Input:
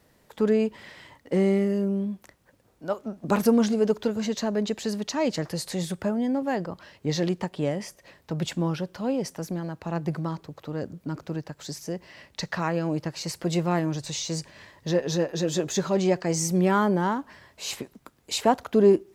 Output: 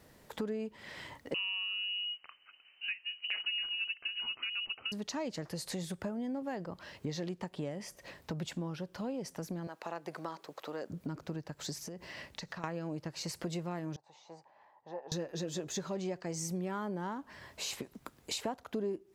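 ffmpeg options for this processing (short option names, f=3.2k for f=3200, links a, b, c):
-filter_complex "[0:a]asettb=1/sr,asplit=3[a][b][c];[a]atrim=end=1.344[d];[b]atrim=start=1.34:end=4.92,asetpts=PTS-STARTPTS,afade=t=in:d=0.004:c=qsin,afade=t=out:st=3.576:d=0.004:c=qsin,lowpass=f=2.6k:t=q:w=0.5098,lowpass=f=2.6k:t=q:w=0.6013,lowpass=f=2.6k:t=q:w=0.9,lowpass=f=2.6k:t=q:w=2.563,afreqshift=-3100[e];[c]atrim=start=4.916[f];[d][e]acrossfade=d=0.004:c1=hsin:c2=qsin[g];[g][f]acrossfade=d=0.004:c1=qsin:c2=hsin,asettb=1/sr,asplit=3[h][i][j];[h]atrim=end=9.674[k];[i]atrim=start=9.67:end=10.9,asetpts=PTS-STARTPTS,afade=t=in:d=0.004:c=qsin,afade=t=out:st=1.226:d=0.004:c=qsin,highpass=480[l];[j]atrim=start=10.896[m];[k][l]acrossfade=d=0.004:c1=hsin:c2=qsin[n];[n][m]acrossfade=d=0.004:c1=qsin:c2=hsin,asettb=1/sr,asplit=3[o][p][q];[o]atrim=end=11.824[r];[p]atrim=start=11.82:end=12.64,asetpts=PTS-STARTPTS,afade=t=in:d=0.004:c=qsin,afade=t=out:st=0.816:d=0.004:c=qsin,acompressor=threshold=-40dB:ratio=10:attack=3.2:release=140:knee=1:detection=peak[s];[q]atrim=start=12.636[t];[r][s]acrossfade=d=0.004:c1=hsin:c2=qsin[u];[u][t]acrossfade=d=0.004:c1=qsin:c2=hsin,asettb=1/sr,asplit=3[v][w][x];[v]atrim=end=13.964[y];[w]atrim=start=13.96:end=15.12,asetpts=PTS-STARTPTS,afade=t=in:d=0.004:c=qsin,afade=t=out:st=1.156:d=0.004:c=qsin,bandpass=f=830:t=q:w=7.1[z];[x]atrim=start=15.116[aa];[y][z]acrossfade=d=0.004:c1=hsin:c2=qsin[ab];[ab][aa]acrossfade=d=0.004:c1=qsin:c2=hsin,acompressor=threshold=-39dB:ratio=4,volume=1.5dB"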